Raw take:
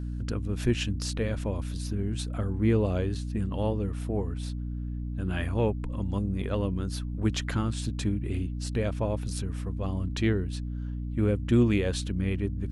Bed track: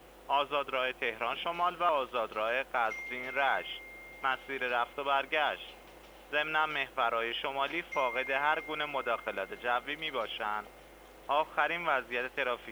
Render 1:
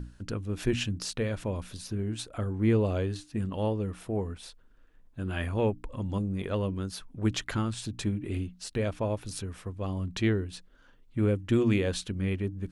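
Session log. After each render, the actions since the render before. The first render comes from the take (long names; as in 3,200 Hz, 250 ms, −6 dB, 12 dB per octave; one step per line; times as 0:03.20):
mains-hum notches 60/120/180/240/300 Hz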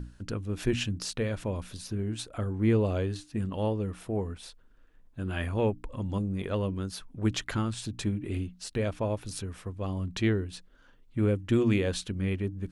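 no processing that can be heard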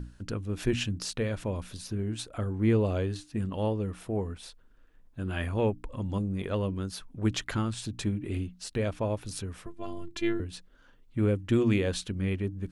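0:09.66–0:10.40: phases set to zero 343 Hz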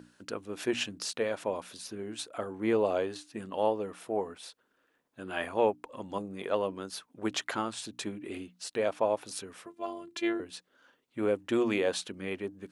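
high-pass filter 340 Hz 12 dB per octave
dynamic equaliser 770 Hz, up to +7 dB, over −46 dBFS, Q 1.1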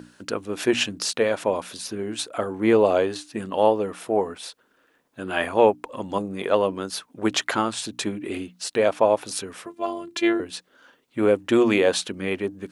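level +9.5 dB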